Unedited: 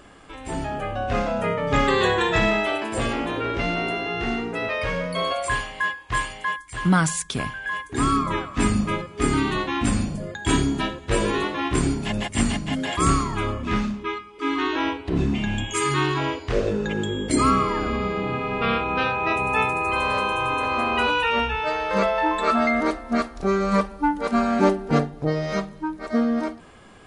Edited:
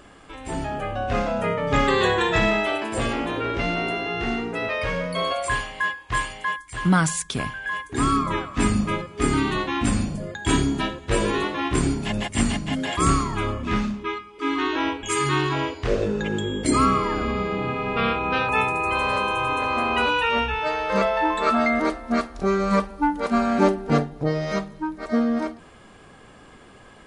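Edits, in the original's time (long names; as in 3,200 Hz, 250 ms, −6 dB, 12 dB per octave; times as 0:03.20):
0:15.03–0:15.68: remove
0:19.14–0:19.50: remove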